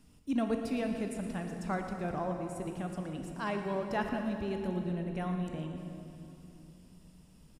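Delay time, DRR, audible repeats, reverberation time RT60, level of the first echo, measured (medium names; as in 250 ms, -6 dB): 116 ms, 3.5 dB, 1, 3.0 s, -13.0 dB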